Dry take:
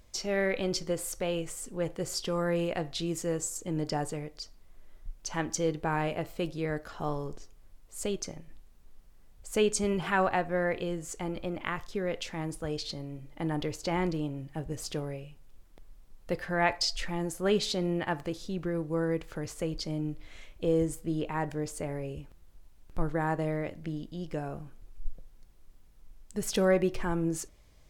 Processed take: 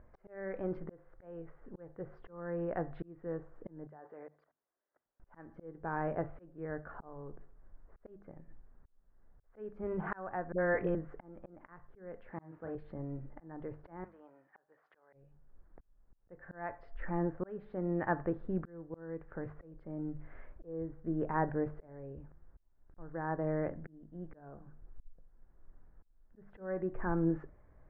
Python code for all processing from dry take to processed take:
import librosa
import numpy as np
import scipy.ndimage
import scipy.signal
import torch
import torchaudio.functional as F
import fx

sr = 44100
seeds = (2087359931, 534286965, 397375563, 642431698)

y = fx.chain(x, sr, fx.highpass(hz=420.0, slope=12),
    fx.level_steps(step_db=23), at=(3.87, 5.2))
y = fx.chain(y, sr, fx.high_shelf(hz=2900.0, db=11.0),
    fx.dispersion(late='highs', ms=65.0, hz=470.0), at=(10.52, 10.95))
y = fx.chain(y, sr, fx.delta_mod(bps=32000, step_db=-43.5),
    fx.highpass(hz=100.0, slope=12),
    fx.doubler(ms=37.0, db=-5.5), at=(12.31, 12.75))
y = fx.chain(y, sr, fx.highpass(hz=990.0, slope=12),
    fx.notch(hz=2700.0, q=17.0), at=(14.04, 15.13))
y = scipy.signal.sosfilt(scipy.signal.cheby1(4, 1.0, 1700.0, 'lowpass', fs=sr, output='sos'), y)
y = fx.hum_notches(y, sr, base_hz=50, count=5)
y = fx.auto_swell(y, sr, attack_ms=758.0)
y = F.gain(torch.from_numpy(y), 1.0).numpy()